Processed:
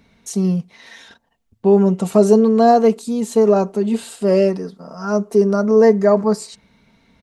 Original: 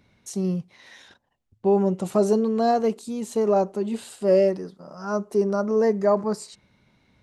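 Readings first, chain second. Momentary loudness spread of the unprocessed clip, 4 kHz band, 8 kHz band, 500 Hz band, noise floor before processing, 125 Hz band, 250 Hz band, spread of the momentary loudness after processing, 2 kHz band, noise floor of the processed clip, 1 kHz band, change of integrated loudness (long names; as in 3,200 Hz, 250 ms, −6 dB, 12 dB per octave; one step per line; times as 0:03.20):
12 LU, +6.5 dB, +7.0 dB, +7.0 dB, −71 dBFS, +8.5 dB, +8.5 dB, 11 LU, +7.0 dB, −65 dBFS, +7.0 dB, +7.5 dB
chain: comb filter 4.4 ms, depth 47%
level +6 dB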